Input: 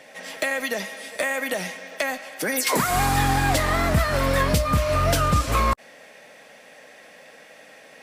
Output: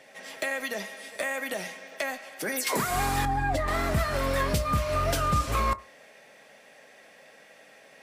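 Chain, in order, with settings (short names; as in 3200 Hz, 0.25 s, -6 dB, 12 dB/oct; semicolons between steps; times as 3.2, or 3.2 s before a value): 3.25–3.68 spectral contrast raised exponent 1.6; on a send: reverb RT60 0.30 s, pre-delay 3 ms, DRR 12 dB; on the sum: gain -6 dB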